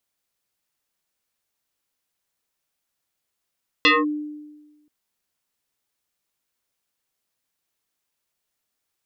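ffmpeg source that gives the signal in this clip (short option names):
-f lavfi -i "aevalsrc='0.299*pow(10,-3*t/1.26)*sin(2*PI*299*t+4.9*clip(1-t/0.2,0,1)*sin(2*PI*2.58*299*t))':d=1.03:s=44100"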